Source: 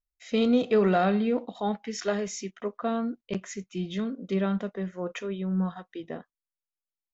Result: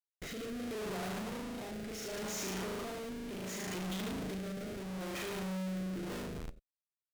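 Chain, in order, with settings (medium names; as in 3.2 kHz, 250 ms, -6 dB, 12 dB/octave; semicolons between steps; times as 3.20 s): tilt EQ +1.5 dB/octave; hum notches 60/120/180 Hz; compression 6:1, threshold -35 dBFS, peak gain reduction 14 dB; flutter echo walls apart 6.4 m, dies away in 1.2 s; Schmitt trigger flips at -42.5 dBFS; reverberation, pre-delay 81 ms, DRR 15.5 dB; rotary cabinet horn 0.7 Hz, later 6 Hz, at 5.77 s; trim -4 dB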